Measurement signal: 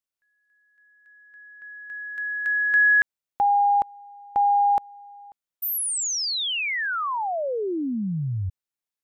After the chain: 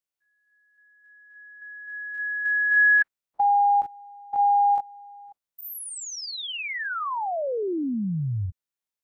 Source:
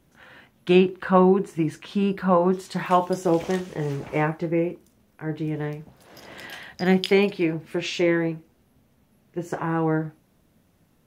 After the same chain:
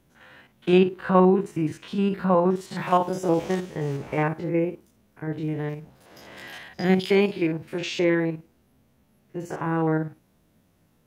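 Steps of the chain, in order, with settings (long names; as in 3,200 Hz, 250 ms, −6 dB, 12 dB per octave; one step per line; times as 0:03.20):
spectrum averaged block by block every 50 ms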